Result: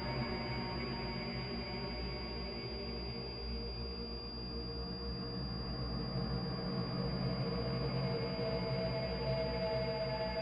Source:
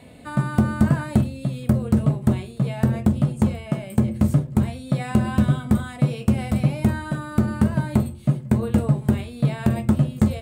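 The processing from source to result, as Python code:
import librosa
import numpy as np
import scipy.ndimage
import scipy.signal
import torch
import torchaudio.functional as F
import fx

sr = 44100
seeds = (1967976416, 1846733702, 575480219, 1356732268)

y = fx.highpass(x, sr, hz=920.0, slope=6)
y = fx.add_hum(y, sr, base_hz=60, snr_db=15)
y = np.clip(y, -10.0 ** (-34.0 / 20.0), 10.0 ** (-34.0 / 20.0))
y = fx.paulstretch(y, sr, seeds[0], factor=29.0, window_s=0.25, from_s=2.37)
y = fx.doubler(y, sr, ms=17.0, db=-5.5)
y = fx.pwm(y, sr, carrier_hz=4800.0)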